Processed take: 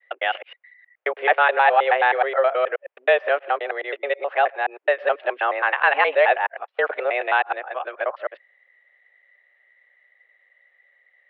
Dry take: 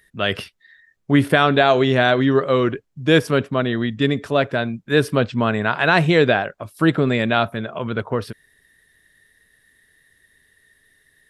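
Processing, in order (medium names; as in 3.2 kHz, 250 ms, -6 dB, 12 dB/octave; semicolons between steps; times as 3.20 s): time reversed locally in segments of 106 ms; mistuned SSB +130 Hz 390–2700 Hz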